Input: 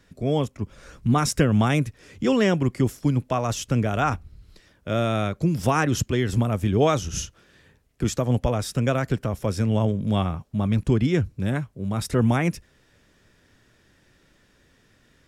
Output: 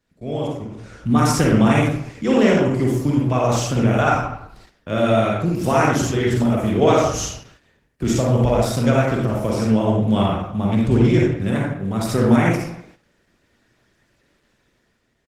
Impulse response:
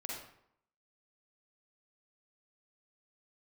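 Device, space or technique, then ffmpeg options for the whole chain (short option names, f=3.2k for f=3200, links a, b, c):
speakerphone in a meeting room: -filter_complex "[0:a]lowshelf=f=140:g=-4[a];[1:a]atrim=start_sample=2205[b];[a][b]afir=irnorm=-1:irlink=0,asplit=2[c][d];[d]adelay=300,highpass=300,lowpass=3.4k,asoftclip=type=hard:threshold=-16.5dB,volume=-27dB[e];[c][e]amix=inputs=2:normalize=0,dynaudnorm=f=130:g=13:m=8.5dB,agate=range=-8dB:threshold=-46dB:ratio=16:detection=peak" -ar 48000 -c:a libopus -b:a 16k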